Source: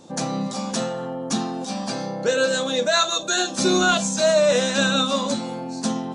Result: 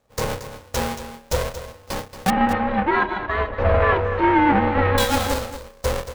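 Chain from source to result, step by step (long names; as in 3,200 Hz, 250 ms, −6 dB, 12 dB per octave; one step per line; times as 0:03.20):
each half-wave held at its own peak
noise gate with hold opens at −15 dBFS
0:02.30–0:04.98: low-pass filter 2,100 Hz 24 dB per octave
ring modulation 290 Hz
single-tap delay 228 ms −11.5 dB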